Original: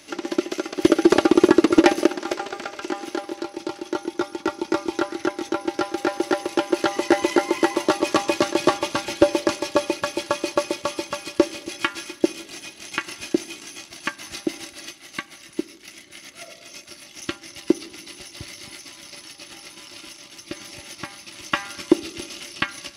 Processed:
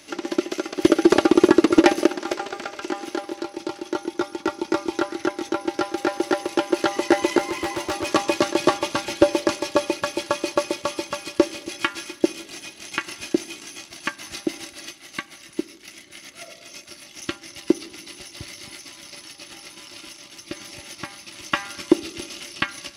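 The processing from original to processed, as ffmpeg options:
-filter_complex "[0:a]asettb=1/sr,asplit=3[a][b][c];[a]atrim=end=7.384[d];[b]atrim=start=7.38:end=8.06,asetpts=PTS-STARTPTS,afade=t=in:d=0.004:c=qsin,afade=t=out:st=0.676:d=0.004:c=qsin,volume=22dB,asoftclip=hard,volume=-22dB[e];[c]atrim=start=8.056[f];[d][e]acrossfade=d=0.004:c1=hsin:c2=qsin[g];[g][f]acrossfade=d=0.004:c1=qsin:c2=hsin"

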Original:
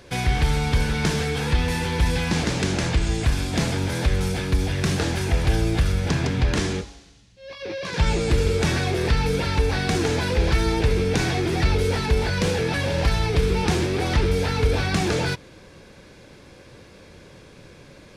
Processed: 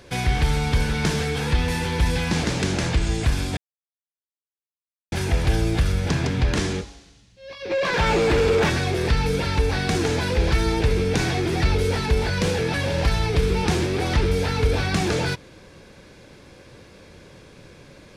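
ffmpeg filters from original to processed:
-filter_complex "[0:a]asplit=3[a][b][c];[a]afade=t=out:st=7.7:d=0.02[d];[b]asplit=2[e][f];[f]highpass=f=720:p=1,volume=22dB,asoftclip=type=tanh:threshold=-9.5dB[g];[e][g]amix=inputs=2:normalize=0,lowpass=f=1.4k:p=1,volume=-6dB,afade=t=in:st=7.7:d=0.02,afade=t=out:st=8.69:d=0.02[h];[c]afade=t=in:st=8.69:d=0.02[i];[d][h][i]amix=inputs=3:normalize=0,asplit=3[j][k][l];[j]atrim=end=3.57,asetpts=PTS-STARTPTS,afade=t=out:st=3.566:d=0.004:c=hsin[m];[k]atrim=start=3.57:end=5.12,asetpts=PTS-STARTPTS,volume=0[n];[l]atrim=start=5.12,asetpts=PTS-STARTPTS,afade=t=in:d=0.004:c=hsin[o];[m][n][o]concat=n=3:v=0:a=1"

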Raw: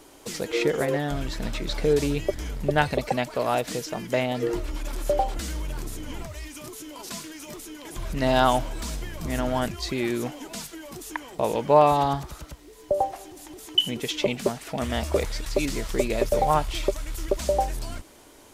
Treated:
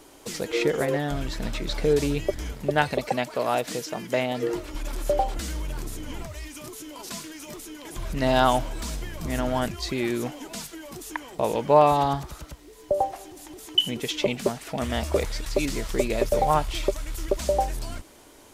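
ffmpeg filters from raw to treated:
-filter_complex "[0:a]asettb=1/sr,asplit=3[a][b][c];[a]atrim=end=2.524[d];[b]atrim=start=2.52:end=4.75,asetpts=PTS-STARTPTS,afade=t=in:d=0.004:c=qsin,afade=t=out:st=2.226:d=0.004:c=qsin,highpass=f=140:p=1[e];[c]atrim=start=4.746[f];[d][e]acrossfade=d=0.004:c1=hsin:c2=qsin[g];[g][f]acrossfade=d=0.004:c1=qsin:c2=hsin"

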